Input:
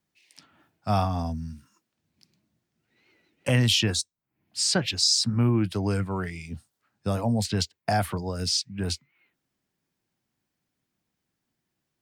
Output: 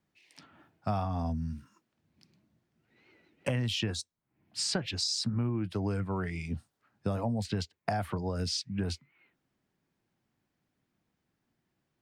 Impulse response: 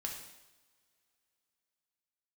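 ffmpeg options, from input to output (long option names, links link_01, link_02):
-af "highshelf=frequency=3700:gain=-11,acompressor=threshold=-32dB:ratio=5,volume=3dB"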